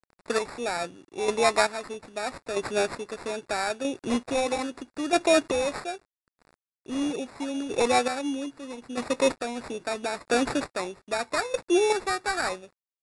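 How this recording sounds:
a quantiser's noise floor 10 bits, dither none
chopped level 0.78 Hz, depth 60%, duty 30%
aliases and images of a low sample rate 3,100 Hz, jitter 0%
MP3

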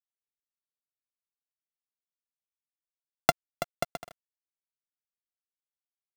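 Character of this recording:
a buzz of ramps at a fixed pitch in blocks of 64 samples
tremolo triangle 1.9 Hz, depth 70%
a quantiser's noise floor 8 bits, dither none

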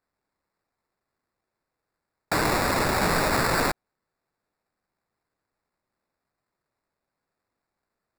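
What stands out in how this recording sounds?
aliases and images of a low sample rate 3,100 Hz, jitter 0%

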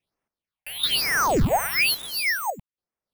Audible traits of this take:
aliases and images of a low sample rate 7,300 Hz, jitter 0%
sample-and-hold tremolo 3.6 Hz, depth 90%
phaser sweep stages 6, 1.1 Hz, lowest notch 300–4,000 Hz

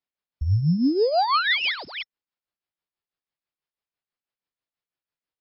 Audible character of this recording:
a buzz of ramps at a fixed pitch in blocks of 8 samples
tremolo triangle 6.1 Hz, depth 70%
MP3

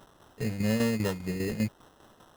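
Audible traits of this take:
a quantiser's noise floor 10 bits, dither triangular
tremolo saw down 5 Hz, depth 65%
aliases and images of a low sample rate 2,300 Hz, jitter 0%

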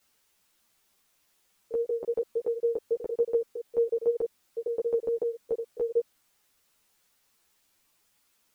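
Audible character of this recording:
tremolo saw down 6.9 Hz, depth 95%
a quantiser's noise floor 12 bits, dither triangular
a shimmering, thickened sound

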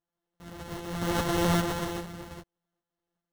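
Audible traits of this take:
a buzz of ramps at a fixed pitch in blocks of 256 samples
tremolo saw up 2.5 Hz, depth 50%
aliases and images of a low sample rate 2,400 Hz, jitter 0%
a shimmering, thickened sound

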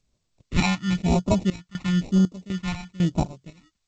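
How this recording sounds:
aliases and images of a low sample rate 1,600 Hz, jitter 0%
phaser sweep stages 2, 1 Hz, lowest notch 450–1,900 Hz
sample-and-hold tremolo 4 Hz, depth 95%
G.722

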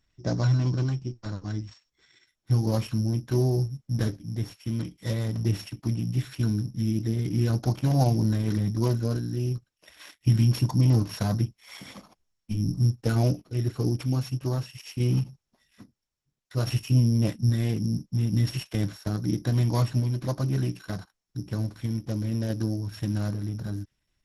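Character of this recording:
a buzz of ramps at a fixed pitch in blocks of 8 samples
sample-and-hold tremolo 1.2 Hz
Opus

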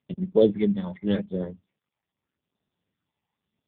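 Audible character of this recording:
phaser sweep stages 12, 0.85 Hz, lowest notch 410–2,300 Hz
AMR narrowband

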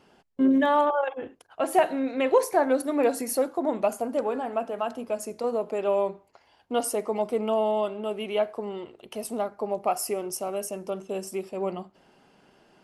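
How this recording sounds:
background noise floor −63 dBFS
spectral slope −4.0 dB per octave

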